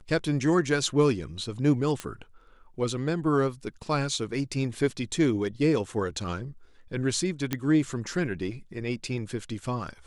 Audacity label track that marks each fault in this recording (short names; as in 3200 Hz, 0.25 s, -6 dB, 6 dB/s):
2.000000	2.000000	pop -17 dBFS
7.530000	7.530000	pop -12 dBFS